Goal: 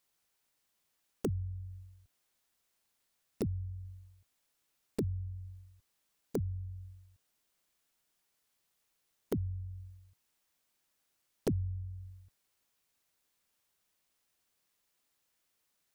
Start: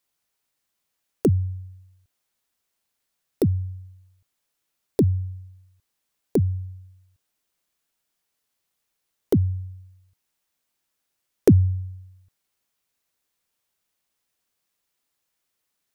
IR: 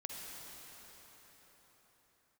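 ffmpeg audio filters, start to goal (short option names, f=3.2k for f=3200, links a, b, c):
-filter_complex "[0:a]asplit=2[a][b];[b]asetrate=22050,aresample=44100,atempo=2,volume=-11dB[c];[a][c]amix=inputs=2:normalize=0,acompressor=threshold=-38dB:ratio=2.5,volume=-1dB"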